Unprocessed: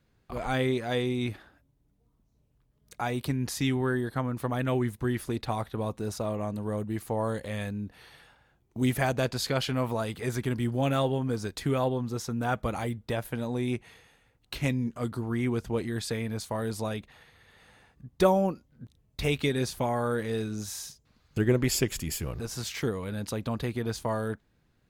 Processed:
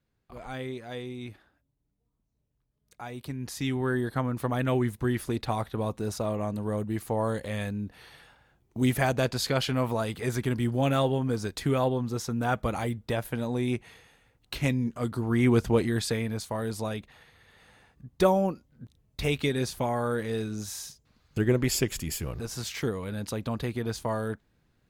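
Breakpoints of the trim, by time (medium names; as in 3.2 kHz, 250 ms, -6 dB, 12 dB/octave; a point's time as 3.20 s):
3.10 s -9 dB
4.02 s +1.5 dB
15.12 s +1.5 dB
15.58 s +8 dB
16.46 s 0 dB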